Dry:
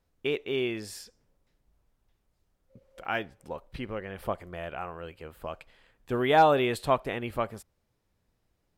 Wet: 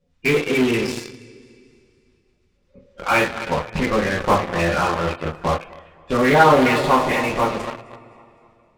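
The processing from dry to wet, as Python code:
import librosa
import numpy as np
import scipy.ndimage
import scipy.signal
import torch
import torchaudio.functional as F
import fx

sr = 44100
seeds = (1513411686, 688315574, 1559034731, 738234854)

p1 = fx.spec_quant(x, sr, step_db=30)
p2 = scipy.signal.sosfilt(scipy.signal.butter(2, 4800.0, 'lowpass', fs=sr, output='sos'), p1)
p3 = p2 + fx.echo_feedback(p2, sr, ms=257, feedback_pct=43, wet_db=-15.5, dry=0)
p4 = fx.rev_double_slope(p3, sr, seeds[0], early_s=0.29, late_s=2.7, knee_db=-21, drr_db=-6.5)
p5 = fx.fuzz(p4, sr, gain_db=34.0, gate_db=-34.0)
p6 = p4 + (p5 * librosa.db_to_amplitude(-9.0))
p7 = fx.rider(p6, sr, range_db=4, speed_s=2.0)
y = fx.doppler_dist(p7, sr, depth_ms=0.2)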